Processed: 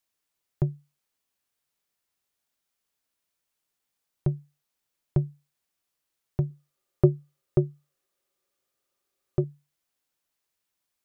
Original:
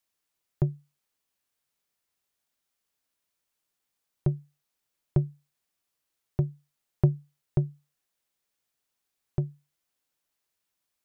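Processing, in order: 6.50–9.44 s: small resonant body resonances 380/540/1200 Hz, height 13 dB, ringing for 55 ms

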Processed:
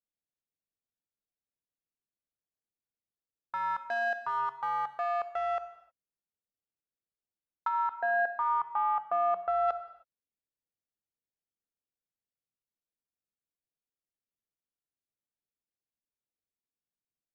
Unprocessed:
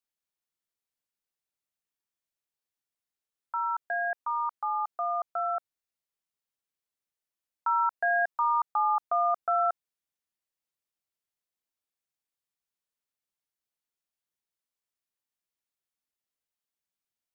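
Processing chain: local Wiener filter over 41 samples; 7.67–9.67 s: low-pass 1 kHz -> 1.2 kHz 6 dB/octave; gated-style reverb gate 340 ms falling, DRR 10 dB

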